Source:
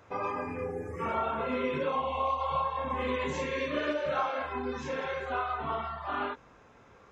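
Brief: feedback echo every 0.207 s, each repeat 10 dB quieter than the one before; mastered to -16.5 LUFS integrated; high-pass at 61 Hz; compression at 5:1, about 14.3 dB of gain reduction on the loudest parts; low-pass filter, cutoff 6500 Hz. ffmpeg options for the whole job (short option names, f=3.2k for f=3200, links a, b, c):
-af "highpass=61,lowpass=6.5k,acompressor=threshold=-43dB:ratio=5,aecho=1:1:207|414|621|828:0.316|0.101|0.0324|0.0104,volume=27.5dB"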